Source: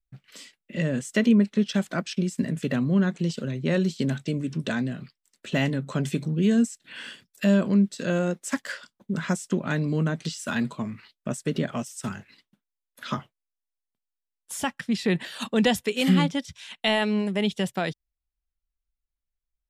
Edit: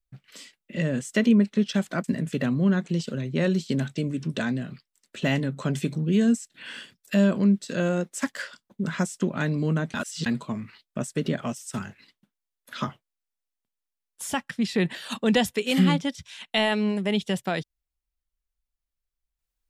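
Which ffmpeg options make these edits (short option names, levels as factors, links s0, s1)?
-filter_complex "[0:a]asplit=4[s0][s1][s2][s3];[s0]atrim=end=2.042[s4];[s1]atrim=start=2.338:end=10.242[s5];[s2]atrim=start=10.238:end=10.562,asetpts=PTS-STARTPTS,areverse[s6];[s3]atrim=start=10.558[s7];[s4][s5]acrossfade=d=0.004:c1=hsin:c2=hsin[s8];[s8][s6]acrossfade=d=0.004:c1=hsin:c2=hsin[s9];[s9][s7]acrossfade=d=0.004:c1=hsin:c2=hsin"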